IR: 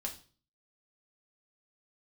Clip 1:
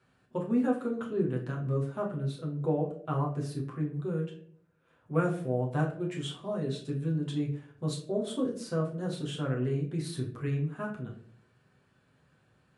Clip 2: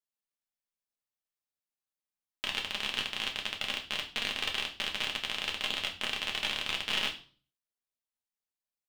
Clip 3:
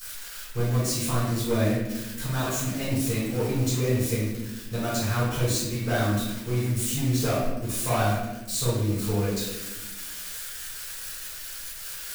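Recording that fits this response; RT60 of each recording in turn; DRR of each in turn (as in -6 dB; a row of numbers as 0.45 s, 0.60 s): 2; 0.60 s, 0.40 s, 1.1 s; -3.0 dB, 0.0 dB, -11.0 dB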